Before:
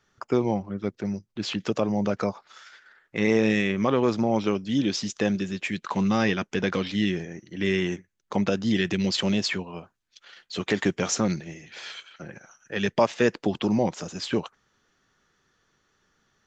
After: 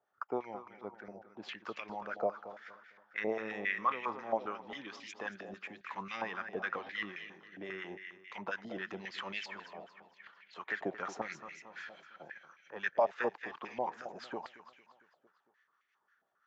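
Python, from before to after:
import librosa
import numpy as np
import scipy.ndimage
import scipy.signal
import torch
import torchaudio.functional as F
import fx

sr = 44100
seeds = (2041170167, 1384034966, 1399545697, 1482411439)

p1 = fx.harmonic_tremolo(x, sr, hz=5.8, depth_pct=70, crossover_hz=960.0)
p2 = p1 + fx.echo_feedback(p1, sr, ms=227, feedback_pct=51, wet_db=-12, dry=0)
p3 = fx.filter_held_bandpass(p2, sr, hz=7.4, low_hz=690.0, high_hz=2200.0)
y = p3 * librosa.db_to_amplitude(4.0)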